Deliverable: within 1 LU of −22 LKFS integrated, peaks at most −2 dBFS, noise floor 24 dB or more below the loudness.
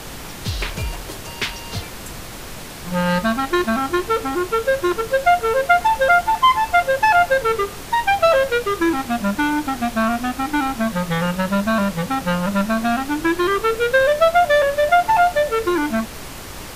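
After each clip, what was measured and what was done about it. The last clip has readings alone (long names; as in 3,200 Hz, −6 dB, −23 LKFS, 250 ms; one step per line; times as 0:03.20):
background noise floor −34 dBFS; target noise floor −43 dBFS; integrated loudness −18.5 LKFS; sample peak −4.0 dBFS; target loudness −22.0 LKFS
→ noise reduction from a noise print 9 dB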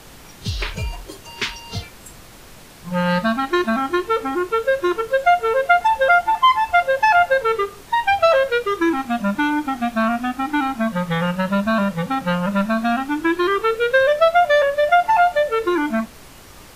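background noise floor −43 dBFS; integrated loudness −18.5 LKFS; sample peak −4.5 dBFS; target loudness −22.0 LKFS
→ level −3.5 dB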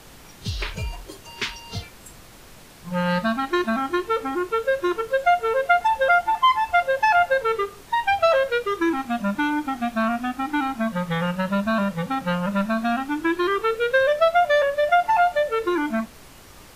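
integrated loudness −22.0 LKFS; sample peak −8.0 dBFS; background noise floor −46 dBFS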